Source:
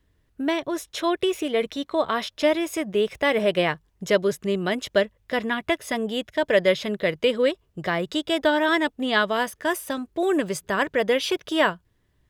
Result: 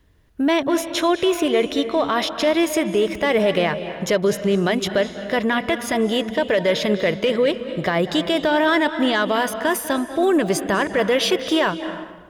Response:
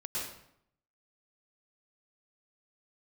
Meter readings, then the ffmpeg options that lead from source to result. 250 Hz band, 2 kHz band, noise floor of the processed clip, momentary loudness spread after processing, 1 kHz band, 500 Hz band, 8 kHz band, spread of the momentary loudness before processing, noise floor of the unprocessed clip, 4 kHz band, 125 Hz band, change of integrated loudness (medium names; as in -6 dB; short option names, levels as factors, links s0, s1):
+5.5 dB, +2.5 dB, -37 dBFS, 4 LU, +4.0 dB, +3.5 dB, +6.5 dB, 6 LU, -67 dBFS, +4.0 dB, +6.5 dB, +4.0 dB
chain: -filter_complex "[0:a]equalizer=f=820:t=o:w=0.77:g=2,bandreject=f=7900:w=15,acontrast=74,alimiter=limit=0.251:level=0:latency=1:release=45,asplit=2[s0][s1];[1:a]atrim=start_sample=2205,asetrate=23373,aresample=44100,highshelf=f=6200:g=-6[s2];[s1][s2]afir=irnorm=-1:irlink=0,volume=0.15[s3];[s0][s3]amix=inputs=2:normalize=0"